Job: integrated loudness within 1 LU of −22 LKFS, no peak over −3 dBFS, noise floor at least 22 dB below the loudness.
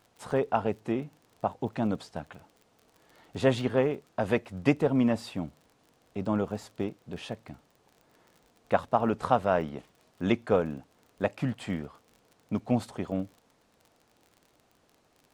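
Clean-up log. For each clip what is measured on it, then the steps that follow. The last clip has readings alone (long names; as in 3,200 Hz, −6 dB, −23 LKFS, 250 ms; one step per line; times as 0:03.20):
crackle rate 35 per second; integrated loudness −30.0 LKFS; sample peak −8.0 dBFS; target loudness −22.0 LKFS
→ click removal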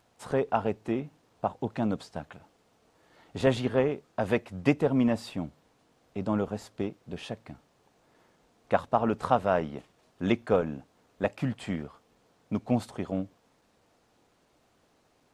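crackle rate 0.065 per second; integrated loudness −30.0 LKFS; sample peak −8.0 dBFS; target loudness −22.0 LKFS
→ level +8 dB
brickwall limiter −3 dBFS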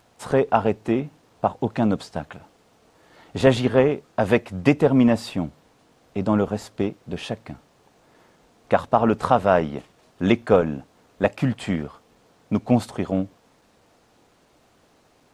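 integrated loudness −22.5 LKFS; sample peak −3.0 dBFS; background noise floor −60 dBFS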